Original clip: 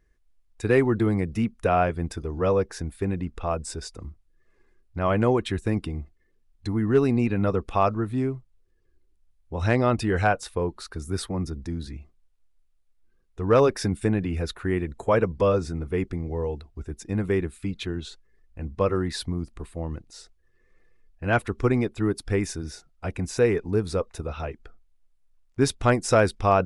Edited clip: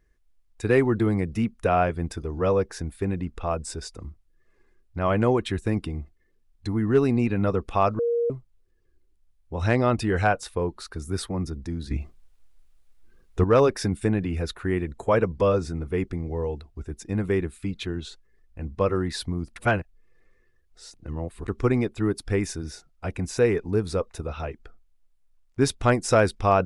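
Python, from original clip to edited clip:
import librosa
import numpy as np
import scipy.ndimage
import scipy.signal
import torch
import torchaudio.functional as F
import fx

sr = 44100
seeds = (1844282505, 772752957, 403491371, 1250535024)

y = fx.edit(x, sr, fx.bleep(start_s=7.99, length_s=0.31, hz=471.0, db=-20.5),
    fx.clip_gain(start_s=11.91, length_s=1.53, db=10.5),
    fx.reverse_span(start_s=19.56, length_s=1.92), tone=tone)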